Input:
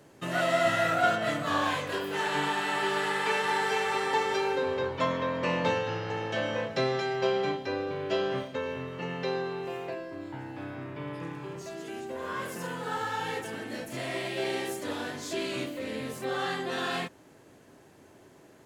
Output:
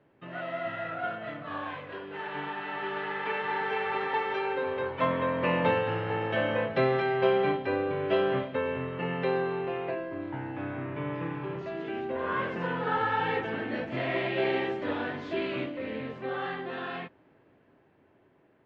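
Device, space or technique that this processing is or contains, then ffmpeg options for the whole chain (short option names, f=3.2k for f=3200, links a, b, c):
action camera in a waterproof case: -filter_complex "[0:a]asettb=1/sr,asplit=3[a][b][c];[a]atrim=end=4.074[d];[b]atrim=start=4.07:end=5.02,asetpts=PTS-STARTPTS,afade=t=in:d=0.004:c=qsin,afade=t=out:st=0.946:d=0.004:c=qsin,lowshelf=f=440:g=-5.5[e];[c]atrim=start=5.016[f];[d][e]acrossfade=d=0.004:c1=hsin:c2=qsin[g];[g][f]acrossfade=d=0.004:c1=qsin:c2=hsin,lowpass=f=2.9k:w=0.5412,lowpass=f=2.9k:w=1.3066,dynaudnorm=f=850:g=9:m=14.5dB,volume=-9dB" -ar 44100 -c:a aac -b:a 64k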